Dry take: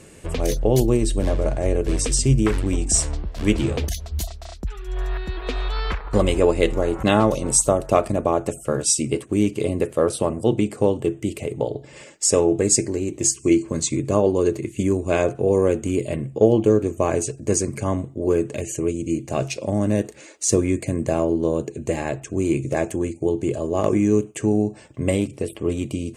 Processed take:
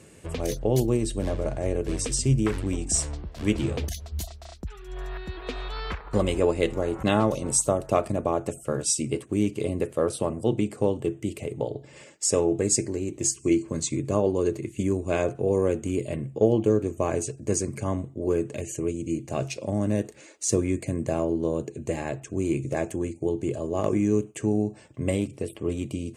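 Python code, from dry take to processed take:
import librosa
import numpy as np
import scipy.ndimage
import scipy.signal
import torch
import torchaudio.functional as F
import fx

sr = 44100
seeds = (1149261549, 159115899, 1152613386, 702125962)

y = scipy.signal.sosfilt(scipy.signal.butter(2, 76.0, 'highpass', fs=sr, output='sos'), x)
y = fx.low_shelf(y, sr, hz=100.0, db=5.5)
y = F.gain(torch.from_numpy(y), -5.5).numpy()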